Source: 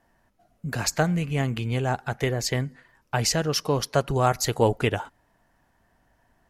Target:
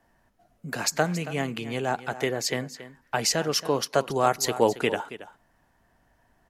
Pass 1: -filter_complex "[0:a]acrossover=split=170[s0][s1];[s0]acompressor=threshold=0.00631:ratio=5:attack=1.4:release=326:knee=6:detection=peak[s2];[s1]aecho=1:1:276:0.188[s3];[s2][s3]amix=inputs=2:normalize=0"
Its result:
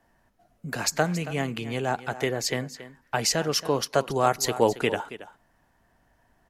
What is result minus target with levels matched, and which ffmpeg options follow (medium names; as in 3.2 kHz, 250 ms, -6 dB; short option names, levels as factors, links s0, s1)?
compression: peak gain reduction -8.5 dB
-filter_complex "[0:a]acrossover=split=170[s0][s1];[s0]acompressor=threshold=0.00188:ratio=5:attack=1.4:release=326:knee=6:detection=peak[s2];[s1]aecho=1:1:276:0.188[s3];[s2][s3]amix=inputs=2:normalize=0"